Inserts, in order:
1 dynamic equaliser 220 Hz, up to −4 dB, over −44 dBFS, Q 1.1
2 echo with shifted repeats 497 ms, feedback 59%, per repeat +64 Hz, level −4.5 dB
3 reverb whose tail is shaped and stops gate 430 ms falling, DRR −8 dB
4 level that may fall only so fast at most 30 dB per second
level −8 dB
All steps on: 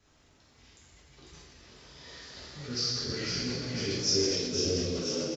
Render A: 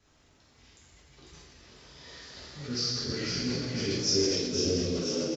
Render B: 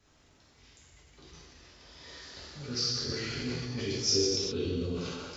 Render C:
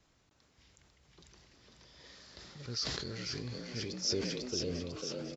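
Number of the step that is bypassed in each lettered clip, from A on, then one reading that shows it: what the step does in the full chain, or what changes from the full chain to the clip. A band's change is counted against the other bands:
1, 250 Hz band +2.5 dB
2, change in integrated loudness −1.0 LU
3, change in crest factor +3.0 dB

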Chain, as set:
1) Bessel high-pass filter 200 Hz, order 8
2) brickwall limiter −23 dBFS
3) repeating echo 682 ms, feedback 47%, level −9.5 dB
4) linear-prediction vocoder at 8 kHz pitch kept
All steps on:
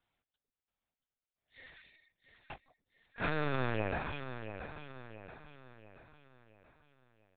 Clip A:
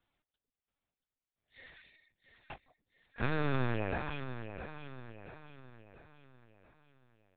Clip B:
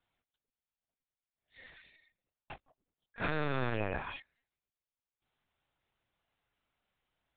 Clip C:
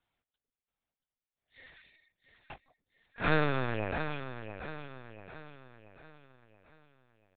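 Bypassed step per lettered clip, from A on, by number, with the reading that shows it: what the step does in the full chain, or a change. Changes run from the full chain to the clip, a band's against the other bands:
1, 125 Hz band +4.0 dB
3, change in momentary loudness spread −1 LU
2, change in crest factor +2.5 dB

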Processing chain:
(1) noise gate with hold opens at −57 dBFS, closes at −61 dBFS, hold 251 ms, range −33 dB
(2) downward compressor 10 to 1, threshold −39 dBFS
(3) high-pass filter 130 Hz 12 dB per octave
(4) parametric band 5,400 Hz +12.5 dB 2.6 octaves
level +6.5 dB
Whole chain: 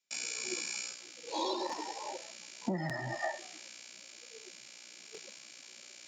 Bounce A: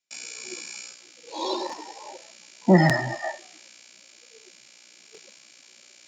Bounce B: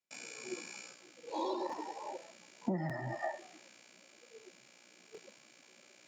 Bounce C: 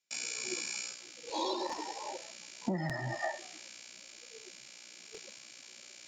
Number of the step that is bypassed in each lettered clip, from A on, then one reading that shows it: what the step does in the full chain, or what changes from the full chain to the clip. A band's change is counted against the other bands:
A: 2, average gain reduction 4.5 dB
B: 4, 8 kHz band −10.5 dB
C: 3, 125 Hz band +2.0 dB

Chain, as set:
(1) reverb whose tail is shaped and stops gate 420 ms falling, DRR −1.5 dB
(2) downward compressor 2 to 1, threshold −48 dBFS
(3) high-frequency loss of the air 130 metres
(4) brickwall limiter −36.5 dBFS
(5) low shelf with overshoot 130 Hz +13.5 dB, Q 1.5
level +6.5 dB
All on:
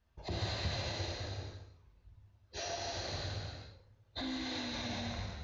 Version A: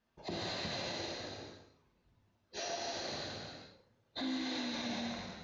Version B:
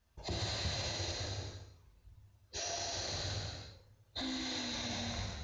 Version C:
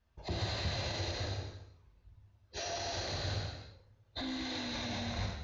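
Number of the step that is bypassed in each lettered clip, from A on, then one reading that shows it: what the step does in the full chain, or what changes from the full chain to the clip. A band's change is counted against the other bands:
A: 5, 125 Hz band −10.5 dB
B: 3, 4 kHz band +3.5 dB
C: 2, average gain reduction 9.0 dB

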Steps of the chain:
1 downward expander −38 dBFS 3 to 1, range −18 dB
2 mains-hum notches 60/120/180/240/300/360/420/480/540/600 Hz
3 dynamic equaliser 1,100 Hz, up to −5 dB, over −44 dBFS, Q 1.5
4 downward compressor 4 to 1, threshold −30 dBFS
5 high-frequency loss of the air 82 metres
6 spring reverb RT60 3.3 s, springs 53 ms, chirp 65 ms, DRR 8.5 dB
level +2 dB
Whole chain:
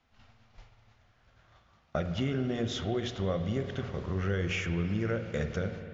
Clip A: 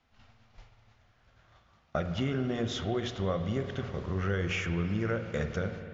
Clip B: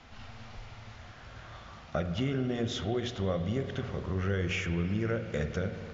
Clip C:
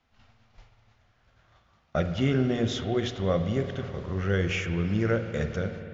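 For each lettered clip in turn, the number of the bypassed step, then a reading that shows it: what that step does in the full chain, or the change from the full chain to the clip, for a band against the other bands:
3, 1 kHz band +2.5 dB
1, change in momentary loudness spread +13 LU
4, average gain reduction 3.0 dB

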